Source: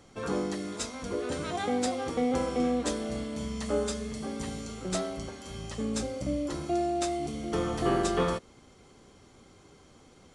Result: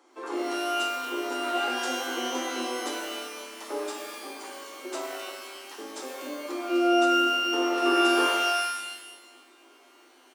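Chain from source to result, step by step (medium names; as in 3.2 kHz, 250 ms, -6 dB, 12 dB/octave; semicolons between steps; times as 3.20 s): harmony voices -5 st -9 dB; rippled Chebyshev high-pass 250 Hz, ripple 9 dB; pitch-shifted reverb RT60 1.1 s, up +12 st, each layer -2 dB, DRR 2 dB; trim +1.5 dB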